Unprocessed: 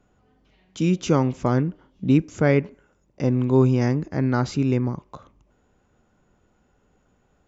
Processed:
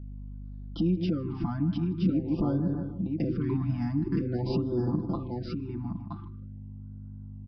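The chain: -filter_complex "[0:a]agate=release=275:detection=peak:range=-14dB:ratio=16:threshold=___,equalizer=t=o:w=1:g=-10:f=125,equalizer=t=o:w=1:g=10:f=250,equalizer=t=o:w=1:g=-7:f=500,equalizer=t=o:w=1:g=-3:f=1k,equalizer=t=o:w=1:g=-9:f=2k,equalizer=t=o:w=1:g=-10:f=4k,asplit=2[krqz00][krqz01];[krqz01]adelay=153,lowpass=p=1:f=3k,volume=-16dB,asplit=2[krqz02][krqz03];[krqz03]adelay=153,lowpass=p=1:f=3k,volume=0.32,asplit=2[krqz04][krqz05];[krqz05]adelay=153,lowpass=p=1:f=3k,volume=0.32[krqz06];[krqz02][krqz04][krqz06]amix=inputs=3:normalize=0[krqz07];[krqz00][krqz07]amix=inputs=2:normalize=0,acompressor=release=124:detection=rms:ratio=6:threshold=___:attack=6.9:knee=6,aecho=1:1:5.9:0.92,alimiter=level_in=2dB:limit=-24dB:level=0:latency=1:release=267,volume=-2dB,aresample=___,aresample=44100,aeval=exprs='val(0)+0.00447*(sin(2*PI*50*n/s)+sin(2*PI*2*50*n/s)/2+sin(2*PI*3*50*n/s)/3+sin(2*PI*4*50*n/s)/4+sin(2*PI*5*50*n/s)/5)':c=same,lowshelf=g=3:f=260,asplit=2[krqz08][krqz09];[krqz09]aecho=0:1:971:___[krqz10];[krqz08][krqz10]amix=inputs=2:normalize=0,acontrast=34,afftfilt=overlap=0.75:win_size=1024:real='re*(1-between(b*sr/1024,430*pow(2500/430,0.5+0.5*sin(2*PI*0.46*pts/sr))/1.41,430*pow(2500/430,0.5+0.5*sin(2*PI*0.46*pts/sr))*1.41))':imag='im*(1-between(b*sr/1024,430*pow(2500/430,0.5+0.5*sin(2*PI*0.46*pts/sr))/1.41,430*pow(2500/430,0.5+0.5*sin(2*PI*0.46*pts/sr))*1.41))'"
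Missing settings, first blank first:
-52dB, -28dB, 11025, 0.631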